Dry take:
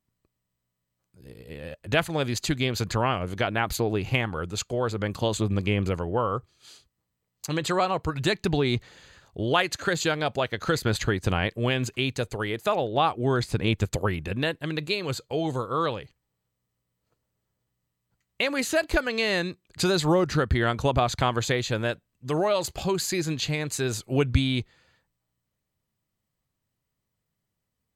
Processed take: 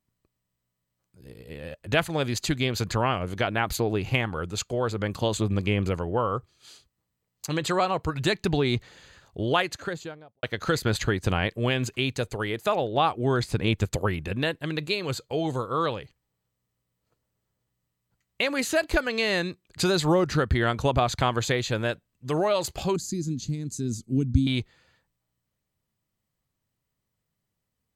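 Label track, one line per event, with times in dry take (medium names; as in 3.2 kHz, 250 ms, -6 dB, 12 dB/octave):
9.440000	10.430000	studio fade out
22.960000	24.470000	FFT filter 160 Hz 0 dB, 230 Hz +8 dB, 660 Hz -25 dB, 2.7 kHz -22 dB, 6.2 kHz -3 dB, 14 kHz -13 dB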